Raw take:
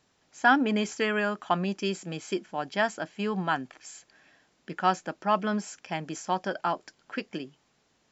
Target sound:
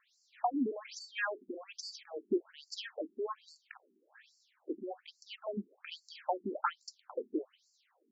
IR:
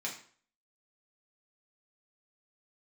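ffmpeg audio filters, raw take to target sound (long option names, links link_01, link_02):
-af "acompressor=threshold=-28dB:ratio=6,aeval=exprs='0.141*(cos(1*acos(clip(val(0)/0.141,-1,1)))-cos(1*PI/2))+0.0126*(cos(4*acos(clip(val(0)/0.141,-1,1)))-cos(4*PI/2))':channel_layout=same,afftfilt=real='re*between(b*sr/1024,280*pow(6100/280,0.5+0.5*sin(2*PI*1.2*pts/sr))/1.41,280*pow(6100/280,0.5+0.5*sin(2*PI*1.2*pts/sr))*1.41)':imag='im*between(b*sr/1024,280*pow(6100/280,0.5+0.5*sin(2*PI*1.2*pts/sr))/1.41,280*pow(6100/280,0.5+0.5*sin(2*PI*1.2*pts/sr))*1.41)':win_size=1024:overlap=0.75,volume=3.5dB"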